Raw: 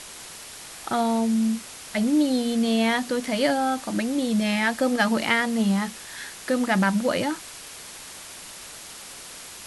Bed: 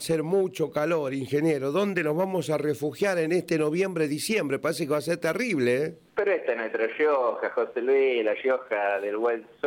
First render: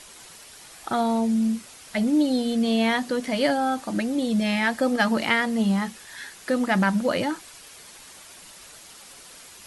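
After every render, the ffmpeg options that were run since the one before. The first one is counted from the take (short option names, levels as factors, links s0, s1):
-af "afftdn=nr=7:nf=-41"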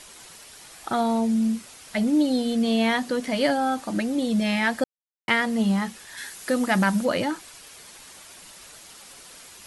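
-filter_complex "[0:a]asettb=1/sr,asplit=3[s0][s1][s2];[s0]atrim=end=6.174[s3];[s1]atrim=start=6.17:end=7.05,asetpts=PTS-STARTPTS,afade=t=in:d=0.004:c=qsin,afade=t=out:st=0.876:d=0.004:c=qsin,highshelf=f=6700:g=9[s4];[s2]atrim=start=7.046[s5];[s3][s4]acrossfade=d=0.004:c1=hsin:c2=qsin[s6];[s6][s5]acrossfade=d=0.004:c1=qsin:c2=hsin,asplit=3[s7][s8][s9];[s7]atrim=end=4.84,asetpts=PTS-STARTPTS,afade=t=out:st=4.836:d=0.004:c=hsin[s10];[s8]atrim=start=4.84:end=5.28,asetpts=PTS-STARTPTS,volume=0[s11];[s9]atrim=start=5.28,asetpts=PTS-STARTPTS,afade=t=in:d=0.004:c=hsin[s12];[s10][s11][s12]concat=n=3:v=0:a=1"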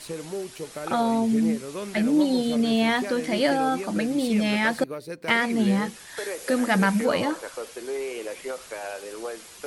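-filter_complex "[1:a]volume=0.355[s0];[0:a][s0]amix=inputs=2:normalize=0"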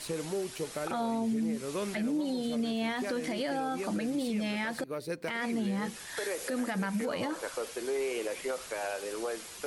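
-af "acompressor=threshold=0.0447:ratio=5,alimiter=level_in=1.06:limit=0.0631:level=0:latency=1:release=67,volume=0.944"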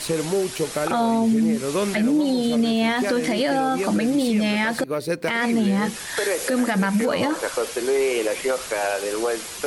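-af "volume=3.76"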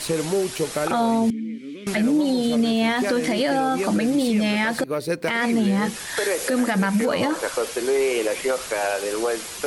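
-filter_complex "[0:a]asettb=1/sr,asplit=3[s0][s1][s2];[s0]atrim=end=1.304[s3];[s1]atrim=start=1.3:end=1.87,asetpts=PTS-STARTPTS,afade=t=in:d=0.004:c=qsin,afade=t=out:st=0.566:d=0.004:c=qsin,asplit=3[s4][s5][s6];[s4]bandpass=f=270:t=q:w=8,volume=1[s7];[s5]bandpass=f=2290:t=q:w=8,volume=0.501[s8];[s6]bandpass=f=3010:t=q:w=8,volume=0.355[s9];[s7][s8][s9]amix=inputs=3:normalize=0[s10];[s2]atrim=start=1.866[s11];[s3][s10]acrossfade=d=0.004:c1=hsin:c2=qsin[s12];[s12][s11]acrossfade=d=0.004:c1=qsin:c2=hsin"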